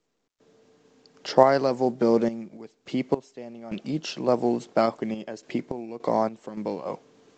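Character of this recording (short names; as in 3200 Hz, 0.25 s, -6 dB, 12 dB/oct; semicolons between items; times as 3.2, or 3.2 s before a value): random-step tremolo, depth 95%; µ-law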